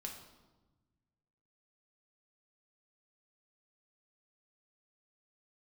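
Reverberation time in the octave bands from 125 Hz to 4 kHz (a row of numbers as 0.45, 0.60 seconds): 2.1, 1.7, 1.2, 1.1, 0.85, 0.85 seconds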